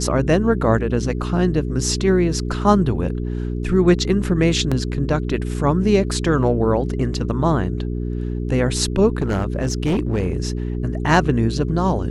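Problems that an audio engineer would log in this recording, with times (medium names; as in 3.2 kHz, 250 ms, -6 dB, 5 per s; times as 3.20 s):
hum 60 Hz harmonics 7 -24 dBFS
4.71–4.72 s: dropout 5.8 ms
9.18–10.37 s: clipped -15 dBFS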